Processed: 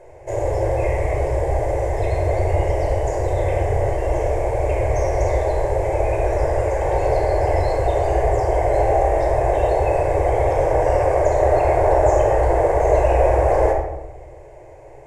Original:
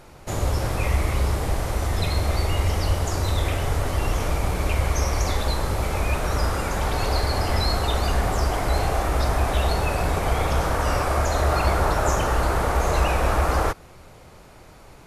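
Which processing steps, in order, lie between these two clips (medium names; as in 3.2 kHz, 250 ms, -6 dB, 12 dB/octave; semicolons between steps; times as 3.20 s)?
FFT filter 130 Hz 0 dB, 210 Hz -30 dB, 340 Hz +10 dB, 780 Hz +15 dB, 1.3 kHz -11 dB, 1.9 kHz +7 dB, 3.9 kHz -14 dB, 7.3 kHz +1 dB, 13 kHz -13 dB; simulated room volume 3900 m³, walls furnished, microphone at 5.2 m; trim -8 dB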